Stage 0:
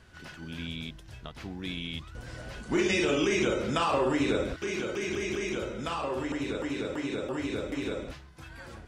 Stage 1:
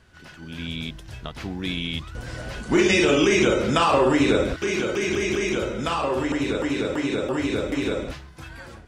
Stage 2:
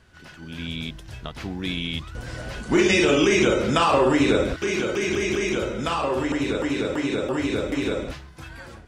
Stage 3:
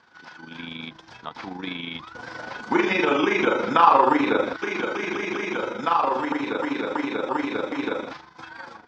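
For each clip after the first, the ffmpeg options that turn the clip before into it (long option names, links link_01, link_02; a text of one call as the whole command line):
ffmpeg -i in.wav -af "dynaudnorm=framelen=250:gausssize=5:maxgain=8dB" out.wav
ffmpeg -i in.wav -af anull out.wav
ffmpeg -i in.wav -filter_complex "[0:a]highpass=370,equalizer=frequency=390:width_type=q:width=4:gain=-8,equalizer=frequency=610:width_type=q:width=4:gain=-9,equalizer=frequency=900:width_type=q:width=4:gain=6,equalizer=frequency=1900:width_type=q:width=4:gain=-5,equalizer=frequency=2800:width_type=q:width=4:gain=-10,equalizer=frequency=4100:width_type=q:width=4:gain=-4,lowpass=frequency=5000:width=0.5412,lowpass=frequency=5000:width=1.3066,tremolo=f=25:d=0.571,acrossover=split=3200[link_01][link_02];[link_02]acompressor=threshold=-54dB:ratio=4:attack=1:release=60[link_03];[link_01][link_03]amix=inputs=2:normalize=0,volume=7.5dB" out.wav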